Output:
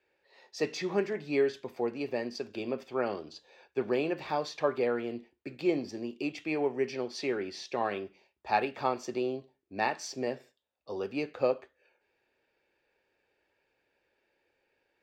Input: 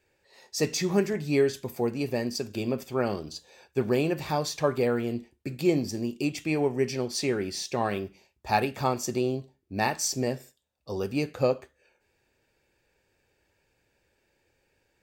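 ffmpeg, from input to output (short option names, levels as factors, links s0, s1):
-filter_complex "[0:a]acrossover=split=260 4600:gain=0.2 1 0.0794[s0][s1][s2];[s0][s1][s2]amix=inputs=3:normalize=0,volume=0.75"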